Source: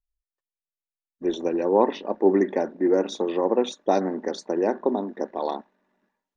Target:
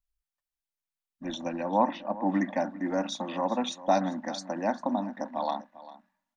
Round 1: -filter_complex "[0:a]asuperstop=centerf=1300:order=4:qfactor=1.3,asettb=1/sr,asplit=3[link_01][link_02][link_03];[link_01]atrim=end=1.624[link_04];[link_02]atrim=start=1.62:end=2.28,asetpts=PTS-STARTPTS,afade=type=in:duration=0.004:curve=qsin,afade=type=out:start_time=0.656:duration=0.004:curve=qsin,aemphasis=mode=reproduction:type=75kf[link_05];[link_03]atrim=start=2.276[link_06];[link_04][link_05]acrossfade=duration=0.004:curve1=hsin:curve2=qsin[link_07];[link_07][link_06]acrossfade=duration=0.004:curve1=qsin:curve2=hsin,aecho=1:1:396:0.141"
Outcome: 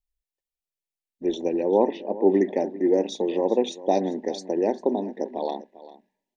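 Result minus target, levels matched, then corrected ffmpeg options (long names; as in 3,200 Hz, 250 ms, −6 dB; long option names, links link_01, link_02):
1,000 Hz band −7.0 dB
-filter_complex "[0:a]asuperstop=centerf=410:order=4:qfactor=1.3,asettb=1/sr,asplit=3[link_01][link_02][link_03];[link_01]atrim=end=1.624[link_04];[link_02]atrim=start=1.62:end=2.28,asetpts=PTS-STARTPTS,afade=type=in:duration=0.004:curve=qsin,afade=type=out:start_time=0.656:duration=0.004:curve=qsin,aemphasis=mode=reproduction:type=75kf[link_05];[link_03]atrim=start=2.276[link_06];[link_04][link_05]acrossfade=duration=0.004:curve1=hsin:curve2=qsin[link_07];[link_07][link_06]acrossfade=duration=0.004:curve1=qsin:curve2=hsin,aecho=1:1:396:0.141"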